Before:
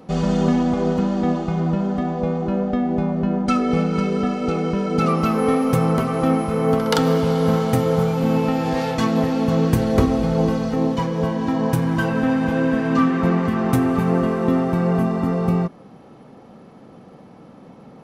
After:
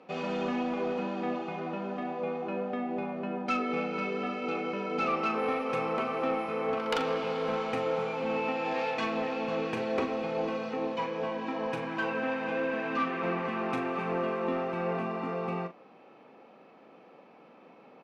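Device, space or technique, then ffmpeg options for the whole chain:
intercom: -filter_complex "[0:a]highpass=380,lowpass=3700,equalizer=frequency=2500:width_type=o:width=0.24:gain=11.5,asoftclip=type=tanh:threshold=-13dB,asplit=2[link_01][link_02];[link_02]adelay=40,volume=-9dB[link_03];[link_01][link_03]amix=inputs=2:normalize=0,volume=-7dB"

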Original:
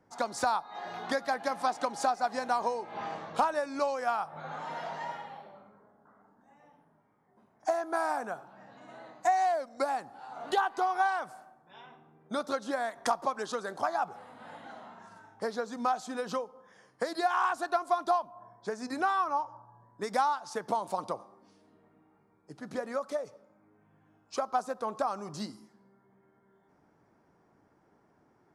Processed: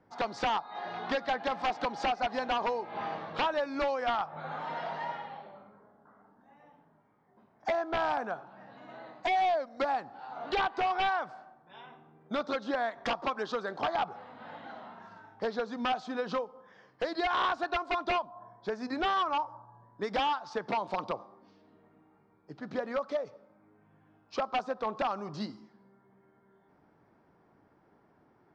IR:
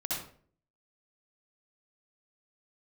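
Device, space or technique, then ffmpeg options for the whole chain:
synthesiser wavefolder: -af "aeval=exprs='0.0596*(abs(mod(val(0)/0.0596+3,4)-2)-1)':channel_layout=same,lowpass=frequency=4600:width=0.5412,lowpass=frequency=4600:width=1.3066,volume=1.5dB"

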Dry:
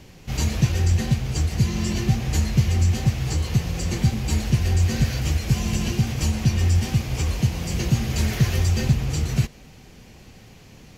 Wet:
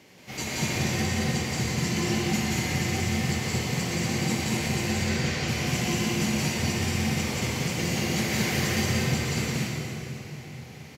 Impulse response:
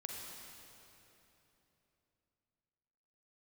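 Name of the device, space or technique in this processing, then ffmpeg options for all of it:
stadium PA: -filter_complex "[0:a]asettb=1/sr,asplit=3[link_01][link_02][link_03];[link_01]atrim=end=4.864[link_04];[link_02]atrim=start=4.86:end=5.48,asetpts=PTS-STARTPTS,afade=type=in:duration=0.004:curve=qsin,afade=type=out:start_time=0.616:duration=0.004:curve=qsin,lowpass=6500[link_05];[link_03]atrim=start=5.476[link_06];[link_04][link_05]acrossfade=duration=0.004:curve1=hsin:curve2=qsin[link_07];[link_07][link_06]acrossfade=duration=0.004:curve1=qsin:curve2=hsin,highpass=220,equalizer=frequency=2100:width_type=o:width=0.22:gain=7,aecho=1:1:177.8|224.5:0.891|0.708[link_08];[1:a]atrim=start_sample=2205[link_09];[link_08][link_09]afir=irnorm=-1:irlink=0"

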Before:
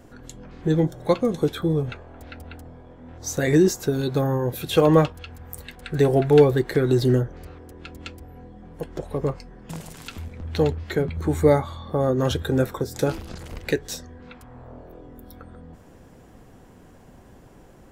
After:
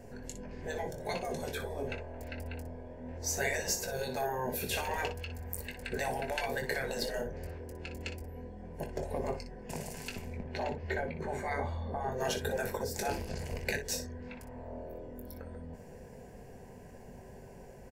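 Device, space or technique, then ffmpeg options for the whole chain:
slapback doubling: -filter_complex "[0:a]asettb=1/sr,asplit=3[link_01][link_02][link_03];[link_01]atrim=end=10.364[link_04];[link_02]atrim=start=10.36:end=12.12,asetpts=PTS-STARTPTS,afade=type=in:duration=0.004:curve=qsin,afade=type=out:start_time=1.756:duration=0.004:curve=qsin,aemphasis=mode=reproduction:type=75fm[link_05];[link_03]atrim=start=12.116[link_06];[link_04][link_05]acrossfade=duration=0.004:curve1=hsin:curve2=qsin[link_07];[link_07][link_06]acrossfade=duration=0.004:curve1=qsin:curve2=hsin,afftfilt=real='re*lt(hypot(re,im),0.251)':imag='im*lt(hypot(re,im),0.251)':win_size=1024:overlap=0.75,superequalizer=6b=0.447:7b=1.58:8b=1.41:10b=0.282:13b=0.398,asplit=3[link_08][link_09][link_10];[link_09]adelay=21,volume=-8dB[link_11];[link_10]adelay=60,volume=-10dB[link_12];[link_08][link_11][link_12]amix=inputs=3:normalize=0,volume=-2.5dB"

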